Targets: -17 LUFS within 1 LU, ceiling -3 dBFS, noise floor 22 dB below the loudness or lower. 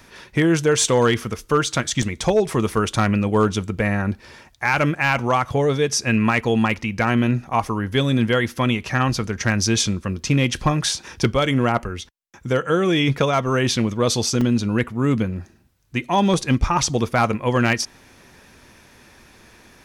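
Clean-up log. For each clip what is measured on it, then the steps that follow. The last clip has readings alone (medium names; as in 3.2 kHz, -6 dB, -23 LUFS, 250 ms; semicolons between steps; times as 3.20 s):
clipped samples 0.6%; clipping level -9.5 dBFS; dropouts 3; longest dropout 4.0 ms; loudness -20.5 LUFS; peak level -9.5 dBFS; loudness target -17.0 LUFS
-> clip repair -9.5 dBFS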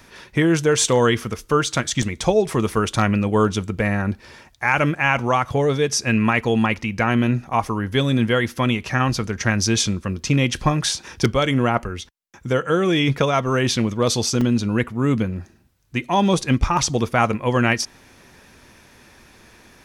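clipped samples 0.0%; dropouts 3; longest dropout 4.0 ms
-> interpolate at 2.02/7.53/14.41 s, 4 ms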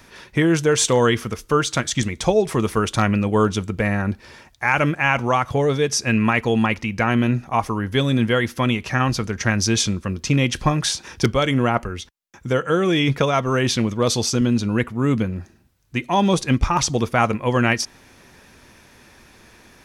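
dropouts 0; loudness -20.0 LUFS; peak level -3.5 dBFS; loudness target -17.0 LUFS
-> trim +3 dB; peak limiter -3 dBFS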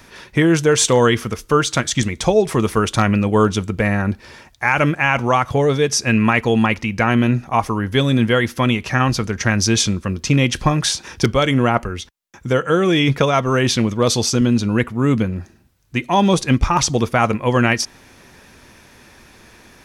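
loudness -17.5 LUFS; peak level -3.0 dBFS; noise floor -48 dBFS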